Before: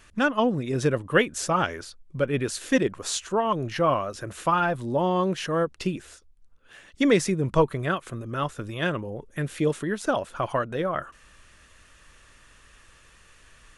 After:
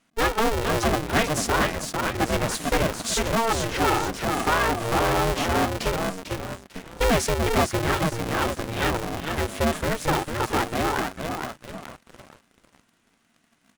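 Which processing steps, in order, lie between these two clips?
on a send: frequency-shifting echo 0.447 s, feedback 44%, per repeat -72 Hz, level -6.5 dB; on the sum: sample leveller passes 3; polarity switched at an audio rate 230 Hz; gain -8.5 dB

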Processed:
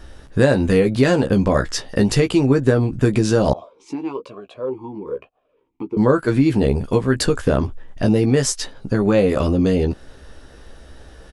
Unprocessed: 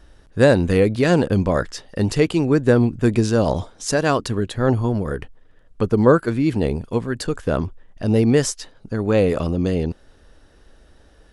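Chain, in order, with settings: compressor 4:1, threshold -22 dBFS, peak gain reduction 12 dB; doubler 15 ms -6 dB; 3.53–5.97 vowel sweep a-u 1.1 Hz; gain +8 dB

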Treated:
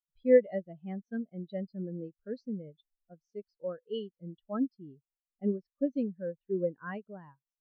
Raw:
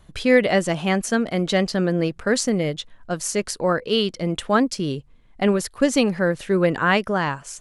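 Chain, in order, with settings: resonant high shelf 6700 Hz -13 dB, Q 1.5; spectral expander 2.5:1; gain -6.5 dB

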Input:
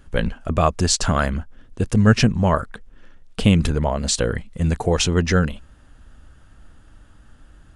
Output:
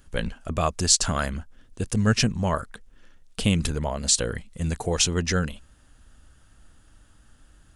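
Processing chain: high shelf 3900 Hz +12 dB; gain -7 dB

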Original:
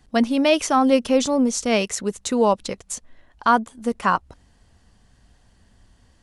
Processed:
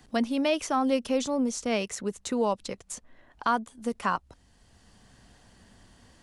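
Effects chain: three-band squash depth 40%; gain -8 dB

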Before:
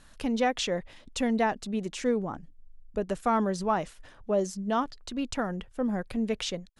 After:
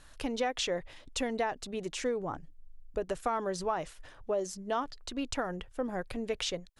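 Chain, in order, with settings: bell 210 Hz -12 dB 0.44 oct; compressor 4:1, threshold -28 dBFS, peak gain reduction 6 dB

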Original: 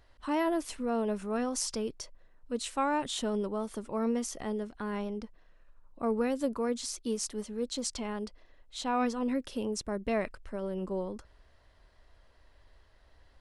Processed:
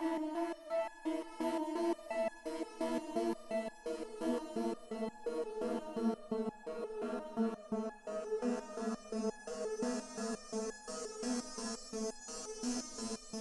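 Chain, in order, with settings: low-pass opened by the level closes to 580 Hz, open at -27 dBFS; Paulstretch 9.8×, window 1.00 s, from 0.43; on a send: swelling echo 0.184 s, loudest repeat 5, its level -9 dB; on the sum: stepped resonator 5.7 Hz 81–840 Hz; gain +1 dB

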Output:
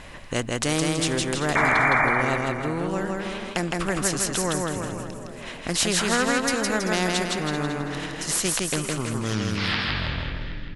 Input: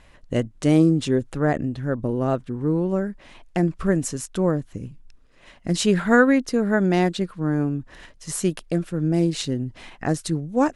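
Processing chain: tape stop at the end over 2.23 s; frequency-shifting echo 0.387 s, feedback 36%, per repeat +31 Hz, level -19 dB; painted sound noise, 1.55–2.06, 590–2400 Hz -15 dBFS; on a send: feedback echo 0.162 s, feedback 36%, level -3.5 dB; on the sum: spectral compressor 2:1; gain -6 dB

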